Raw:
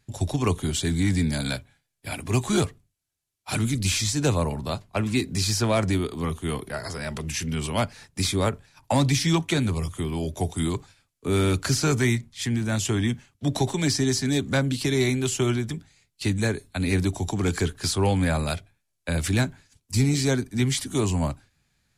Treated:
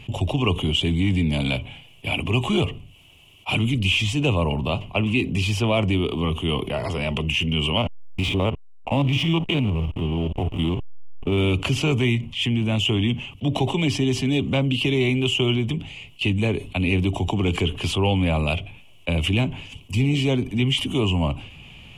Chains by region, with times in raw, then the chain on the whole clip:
7.77–11.38 s: spectrogram pixelated in time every 50 ms + hysteresis with a dead band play -28.5 dBFS
whole clip: FFT filter 1.1 kHz 0 dB, 1.6 kHz -17 dB, 2.9 kHz +15 dB, 4.1 kHz -15 dB; level flattener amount 50%

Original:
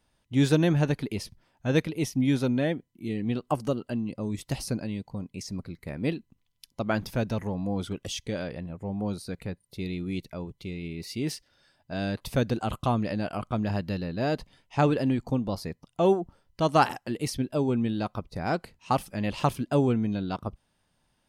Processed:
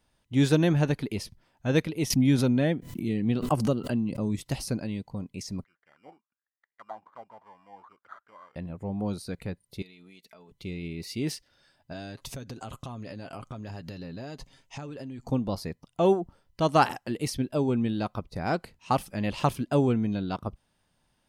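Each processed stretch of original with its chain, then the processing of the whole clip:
2.10–4.49 s: peaking EQ 160 Hz +4 dB 1.3 oct + swell ahead of each attack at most 77 dB/s
5.64–8.56 s: low-pass 10 kHz 24 dB/octave + sample-rate reducer 2.6 kHz + auto-wah 780–2000 Hz, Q 10, down, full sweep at -23.5 dBFS
9.82–10.52 s: high-pass 920 Hz 6 dB/octave + comb 4.6 ms, depth 62% + compression 8:1, threshold -48 dBFS
11.92–15.28 s: peaking EQ 6.6 kHz +8.5 dB 0.65 oct + comb 7.4 ms, depth 37% + compression 12:1, threshold -35 dBFS
whole clip: none

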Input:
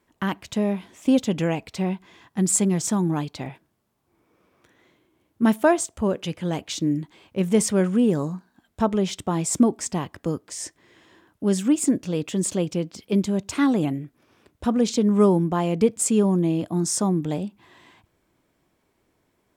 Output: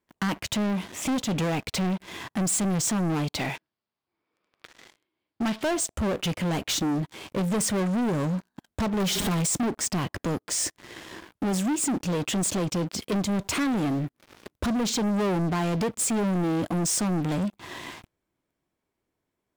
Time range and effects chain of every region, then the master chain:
3.39–5.63 s: elliptic low-pass 4.9 kHz + tilt EQ +2.5 dB/octave
9.00–9.47 s: jump at every zero crossing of -28.5 dBFS + comb 4.9 ms, depth 76%
whole clip: compression 2:1, threshold -37 dBFS; waveshaping leveller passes 5; trim -3.5 dB

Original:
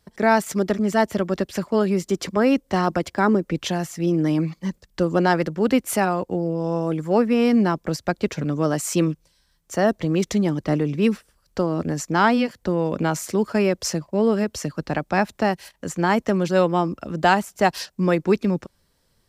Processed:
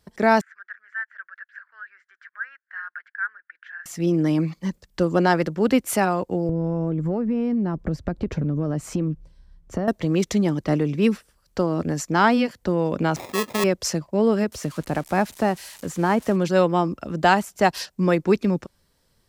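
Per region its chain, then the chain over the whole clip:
0.41–3.86 s: tilt EQ +4 dB/octave + upward compressor, threshold -34 dBFS + Butterworth band-pass 1.6 kHz, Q 4.9
6.49–9.88 s: tilt EQ -4 dB/octave + compression 10:1, threshold -20 dBFS
13.16–13.64 s: doubling 20 ms -12 dB + sample-rate reducer 1.5 kHz + high-pass 430 Hz 6 dB/octave
14.52–16.36 s: zero-crossing glitches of -22.5 dBFS + low-pass 11 kHz + treble shelf 2.5 kHz -10.5 dB
whole clip: none

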